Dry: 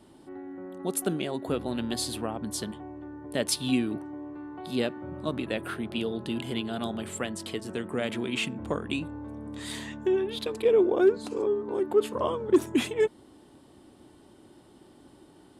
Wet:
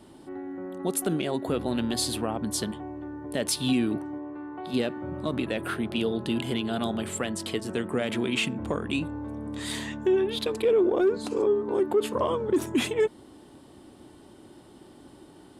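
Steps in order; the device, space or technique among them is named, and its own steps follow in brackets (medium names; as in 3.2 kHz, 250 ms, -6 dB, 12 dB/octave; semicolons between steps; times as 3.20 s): soft clipper into limiter (saturation -11.5 dBFS, distortion -24 dB; peak limiter -20 dBFS, peak gain reduction 7 dB); 4.18–4.74 s: tone controls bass -6 dB, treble -11 dB; trim +4 dB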